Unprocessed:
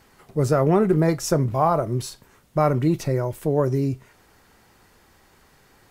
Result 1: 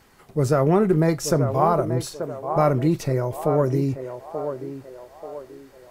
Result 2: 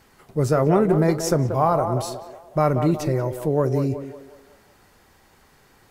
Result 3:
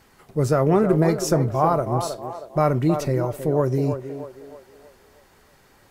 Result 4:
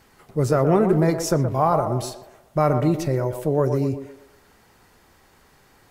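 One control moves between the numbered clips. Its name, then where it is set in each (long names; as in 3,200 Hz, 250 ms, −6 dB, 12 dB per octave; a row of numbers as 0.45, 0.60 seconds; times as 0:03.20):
feedback echo with a band-pass in the loop, delay time: 884, 183, 317, 121 milliseconds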